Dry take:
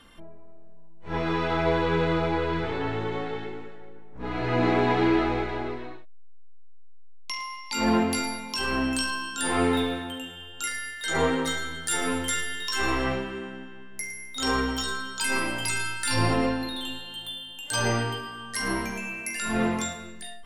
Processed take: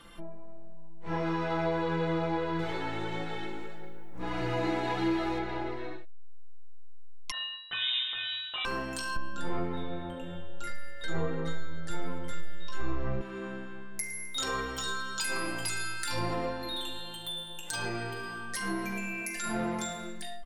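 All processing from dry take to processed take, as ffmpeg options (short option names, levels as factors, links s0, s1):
-filter_complex "[0:a]asettb=1/sr,asplit=3[s0][s1][s2];[s0]atrim=end=2.594[s3];[s1]atrim=start=2.59:end=5.39,asetpts=PTS-STARTPTS,afade=t=in:d=0.004:c=qsin,afade=t=out:st=2.796:d=0.004:c=qsin,aemphasis=mode=production:type=50fm,aphaser=in_gain=1:out_gain=1:delay=4:decay=0.26:speed=1.6:type=triangular[s4];[s2]atrim=start=5.386[s5];[s3][s4]acrossfade=d=0.004:c1=hsin:c2=qsin[s6];[s6][s5]acrossfade=d=0.004:c1=qsin:c2=hsin,asettb=1/sr,asplit=3[s7][s8][s9];[s7]atrim=end=7.314[s10];[s8]atrim=start=7.31:end=8.65,asetpts=PTS-STARTPTS,afade=t=in:d=0.004:c=qsin,afade=t=out:st=1.336:d=0.004:c=qsin,agate=range=0.0224:threshold=0.0224:ratio=3:release=100:detection=peak,lowpass=f=3300:t=q:w=0.5098,lowpass=f=3300:t=q:w=0.6013,lowpass=f=3300:t=q:w=0.9,lowpass=f=3300:t=q:w=2.563,afreqshift=-3900[s11];[s9]atrim=start=8.646[s12];[s10][s11]acrossfade=d=0.004:c1=hsin:c2=qsin[s13];[s13][s12]acrossfade=d=0.004:c1=qsin:c2=hsin,asettb=1/sr,asplit=3[s14][s15][s16];[s14]atrim=end=9.164[s17];[s15]atrim=start=9.16:end=13.21,asetpts=PTS-STARTPTS,afade=t=in:d=0.004:c=qsin,afade=t=out:st=4.046:d=0.004:c=qsin,aemphasis=mode=reproduction:type=riaa,aeval=exprs='val(0)+0.00501*sin(2*PI*560*n/s)':c=same[s18];[s16]atrim=start=13.206[s19];[s17][s18]acrossfade=d=0.004:c1=hsin:c2=qsin[s20];[s20][s19]acrossfade=d=0.004:c1=qsin:c2=hsin,asettb=1/sr,asplit=3[s21][s22][s23];[s21]atrim=end=17.284[s24];[s22]atrim=start=17.28:end=19.44,asetpts=PTS-STARTPTS,afade=t=in:d=0.004:c=qsin,afade=t=out:st=2.156:d=0.004:c=qsin,aecho=1:1:5.6:0.63,atrim=end_sample=95256,acompressor=threshold=0.0178:ratio=1.5:attack=3.2:release=140:knee=1:detection=peak[s25];[s23]atrim=start=19.436[s26];[s24][s25]acrossfade=d=0.004:c1=hsin:c2=qsin[s27];[s27][s26]acrossfade=d=0.004:c1=qsin:c2=hsin,acompressor=threshold=0.02:ratio=2.5,aecho=1:1:5.9:0.65"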